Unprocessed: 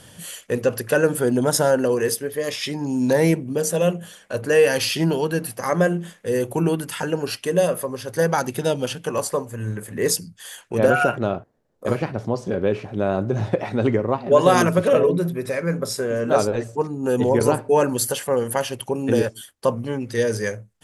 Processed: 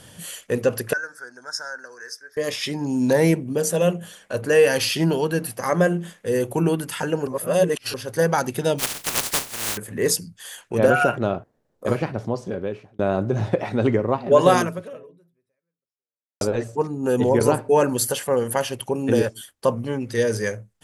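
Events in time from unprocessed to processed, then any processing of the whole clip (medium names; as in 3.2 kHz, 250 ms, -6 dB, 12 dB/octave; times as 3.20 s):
0.93–2.37 s: two resonant band-passes 2.9 kHz, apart 1.8 oct
7.27–7.94 s: reverse
8.78–9.76 s: spectral contrast reduction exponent 0.11
11.88–12.99 s: fade out equal-power
14.53–16.41 s: fade out exponential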